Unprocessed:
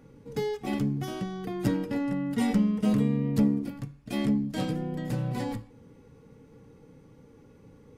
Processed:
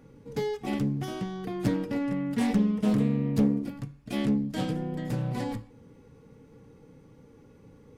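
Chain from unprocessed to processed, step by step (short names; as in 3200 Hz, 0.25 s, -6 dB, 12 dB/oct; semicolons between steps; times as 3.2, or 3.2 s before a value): Doppler distortion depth 0.26 ms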